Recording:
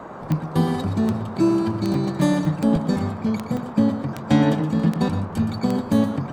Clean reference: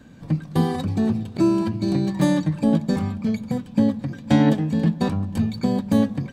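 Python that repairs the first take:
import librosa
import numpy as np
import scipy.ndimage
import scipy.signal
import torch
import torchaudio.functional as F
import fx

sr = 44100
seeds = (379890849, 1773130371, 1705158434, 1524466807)

y = fx.fix_declick_ar(x, sr, threshold=10.0)
y = fx.fix_interpolate(y, sr, at_s=(1.94, 2.45, 2.76, 3.57), length_ms=2.7)
y = fx.noise_reduce(y, sr, print_start_s=0.0, print_end_s=0.5, reduce_db=6.0)
y = fx.fix_echo_inverse(y, sr, delay_ms=120, level_db=-10.5)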